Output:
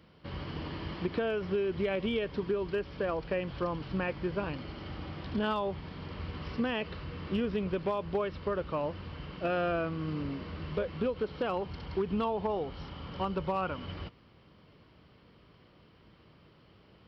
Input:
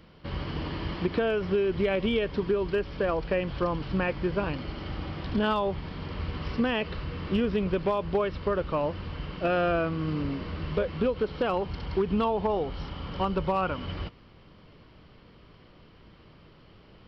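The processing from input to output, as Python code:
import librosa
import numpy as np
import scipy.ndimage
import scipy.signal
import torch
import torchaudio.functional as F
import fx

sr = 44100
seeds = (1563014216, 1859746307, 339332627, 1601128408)

y = scipy.signal.sosfilt(scipy.signal.butter(2, 58.0, 'highpass', fs=sr, output='sos'), x)
y = y * 10.0 ** (-5.0 / 20.0)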